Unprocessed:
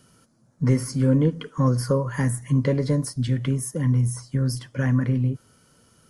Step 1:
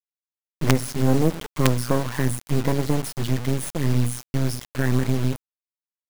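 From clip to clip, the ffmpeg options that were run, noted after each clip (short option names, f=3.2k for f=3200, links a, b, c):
-af "acrusher=bits=3:dc=4:mix=0:aa=0.000001,volume=3.5dB"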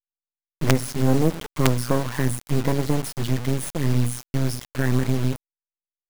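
-af "aeval=exprs='abs(val(0))':c=same"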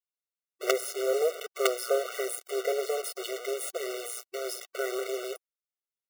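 -af "afftfilt=real='re*eq(mod(floor(b*sr/1024/380),2),1)':imag='im*eq(mod(floor(b*sr/1024/380),2),1)':win_size=1024:overlap=0.75"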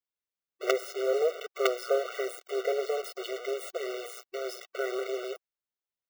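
-af "equalizer=f=11k:w=0.72:g=-14"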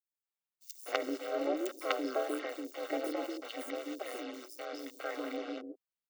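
-filter_complex "[0:a]aeval=exprs='val(0)*sin(2*PI*110*n/s)':c=same,acrossover=split=420|5900[a][b][c];[b]adelay=250[d];[a]adelay=390[e];[e][d][c]amix=inputs=3:normalize=0,volume=-1dB"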